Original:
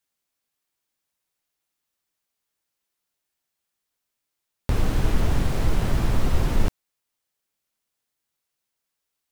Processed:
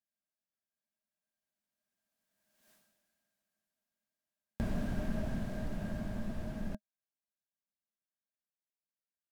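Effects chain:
source passing by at 0:02.71, 27 m/s, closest 1.6 metres
hollow resonant body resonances 210/620/1,600 Hz, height 16 dB, ringing for 55 ms
level +14 dB

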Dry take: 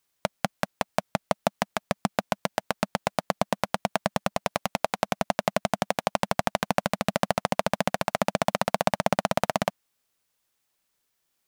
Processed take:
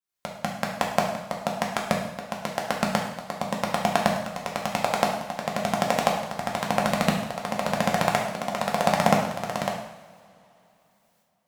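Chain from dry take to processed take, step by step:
shaped tremolo saw up 0.98 Hz, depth 95%
coupled-rooms reverb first 0.77 s, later 3.4 s, from −21 dB, DRR −1 dB
level +3 dB

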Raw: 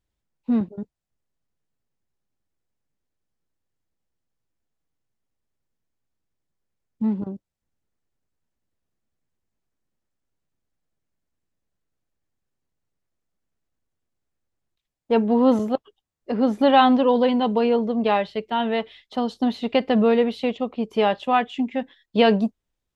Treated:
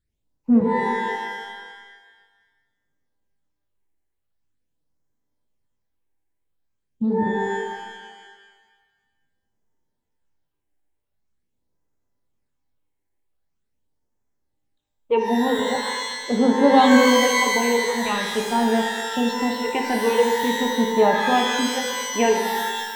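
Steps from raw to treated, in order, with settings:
all-pass phaser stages 8, 0.44 Hz, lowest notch 160–3,700 Hz
reverb with rising layers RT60 1.4 s, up +12 semitones, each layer −2 dB, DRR 3.5 dB

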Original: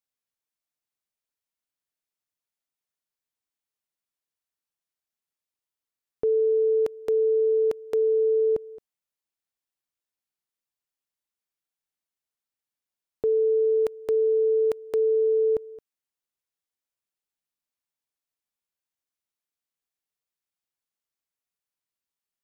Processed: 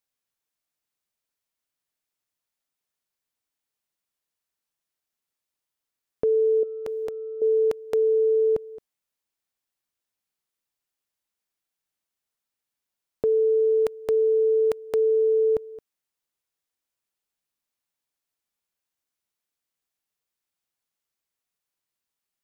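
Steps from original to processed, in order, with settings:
dynamic equaliser 350 Hz, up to −4 dB, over −37 dBFS, Q 1.4
0:06.63–0:07.42: compressor whose output falls as the input rises −32 dBFS, ratio −0.5
level +4 dB

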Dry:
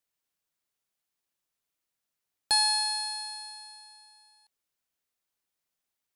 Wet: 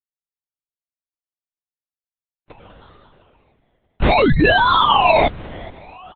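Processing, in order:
gate on every frequency bin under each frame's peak −20 dB weak
downward compressor 3 to 1, threshold −44 dBFS, peak gain reduction 7 dB
sound drawn into the spectrogram fall, 0:04.01–0:05.28, 830–2,600 Hz −18 dBFS
echo with shifted repeats 421 ms, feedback 46%, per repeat −94 Hz, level −20 dB
sample-and-hold swept by an LFO 26×, swing 60% 0.59 Hz
linear-prediction vocoder at 8 kHz whisper
level +5 dB
AAC 32 kbit/s 44,100 Hz

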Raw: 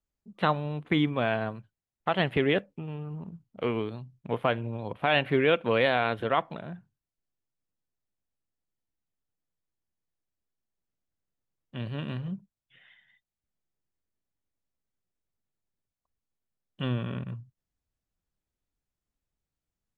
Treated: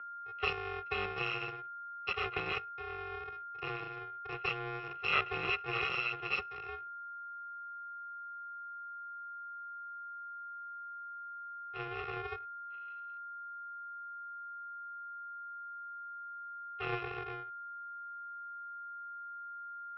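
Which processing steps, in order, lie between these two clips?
samples in bit-reversed order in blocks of 128 samples
steady tone 1,500 Hz −45 dBFS
single-sideband voice off tune −100 Hz 280–3,200 Hz
level +2.5 dB

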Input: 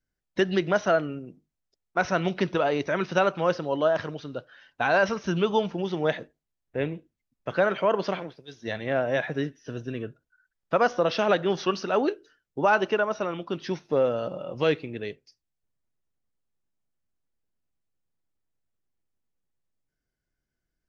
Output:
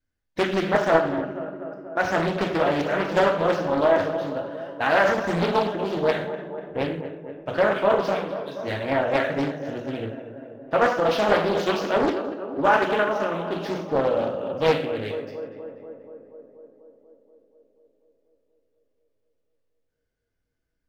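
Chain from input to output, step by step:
running median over 5 samples
on a send: tape delay 242 ms, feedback 80%, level −9.5 dB, low-pass 1,600 Hz
on the sum: reverb whose tail is shaped and stops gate 190 ms falling, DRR 0 dB
highs frequency-modulated by the lows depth 0.64 ms

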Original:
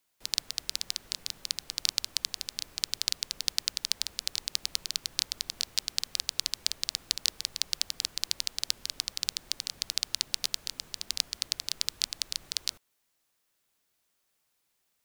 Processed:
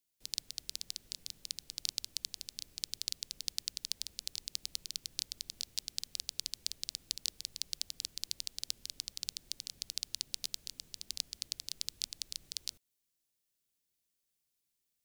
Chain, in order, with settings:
parametric band 1,100 Hz −13 dB 2.2 octaves
level −6 dB

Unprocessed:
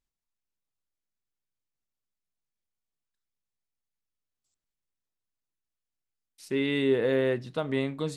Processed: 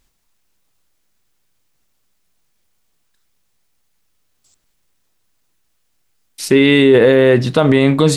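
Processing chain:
boost into a limiter +24.5 dB
level −1 dB

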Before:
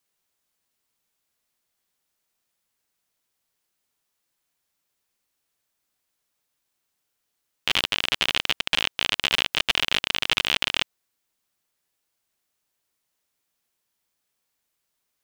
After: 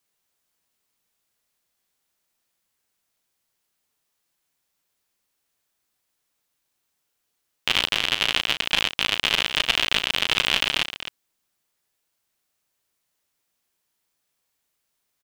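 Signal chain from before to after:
loudspeakers that aren't time-aligned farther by 12 metres −10 dB, 89 metres −11 dB
level +1 dB

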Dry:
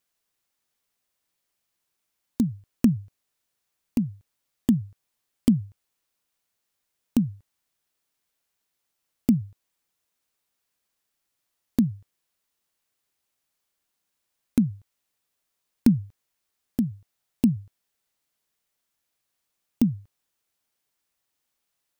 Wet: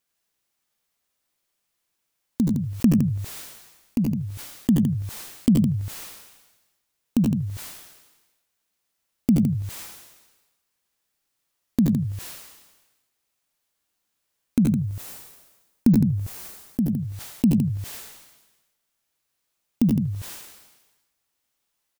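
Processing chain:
0:14.67–0:16.90: parametric band 3,100 Hz −5.5 dB 2.7 octaves
multi-tap delay 73/79/93/107/162 ms −15.5/−9/−4/−19.5/−10.5 dB
level that may fall only so fast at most 49 dB per second

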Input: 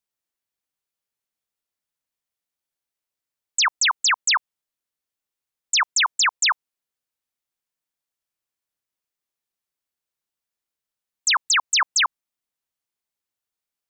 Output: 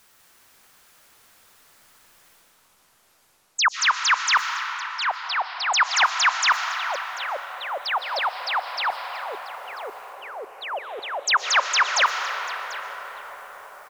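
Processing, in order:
noise gate −23 dBFS, range −16 dB
parametric band 1,400 Hz +7 dB 1.2 octaves
reversed playback
upward compression, threshold −16 dBFS
reversed playback
single-tap delay 741 ms −18 dB
on a send at −5.5 dB: convolution reverb RT60 5.7 s, pre-delay 85 ms
on the sum: delay with pitch and tempo change per echo 198 ms, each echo −5 semitones, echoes 3, each echo −6 dB
level −4 dB

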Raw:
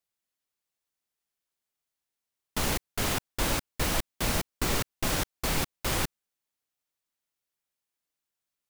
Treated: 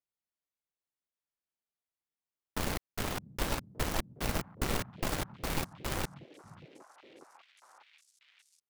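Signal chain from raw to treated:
high-shelf EQ 2,600 Hz −8 dB
in parallel at −3.5 dB: bit reduction 4 bits
on the sum: echo through a band-pass that steps 591 ms, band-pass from 150 Hz, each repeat 1.4 octaves, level −11 dB
level −7 dB

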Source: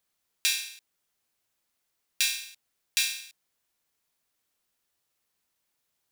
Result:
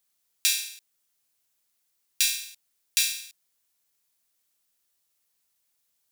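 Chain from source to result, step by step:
high-shelf EQ 3,700 Hz +10 dB
level −4 dB

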